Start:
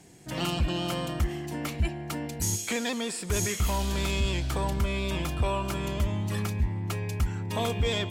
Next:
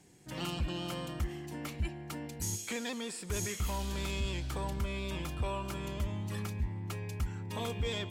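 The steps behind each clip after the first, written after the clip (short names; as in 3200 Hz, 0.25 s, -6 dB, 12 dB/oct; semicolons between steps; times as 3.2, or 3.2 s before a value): notch 670 Hz, Q 12; gain -7.5 dB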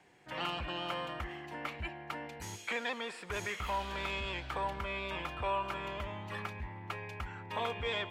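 three-band isolator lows -16 dB, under 540 Hz, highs -21 dB, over 3100 Hz; gain +7 dB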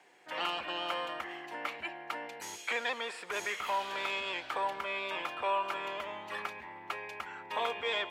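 HPF 390 Hz 12 dB/oct; gain +3 dB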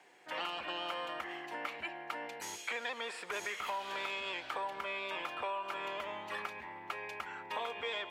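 compressor 5:1, threshold -35 dBFS, peak gain reduction 8 dB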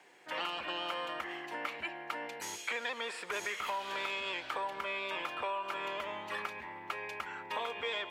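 bell 740 Hz -3 dB 0.31 oct; gain +2 dB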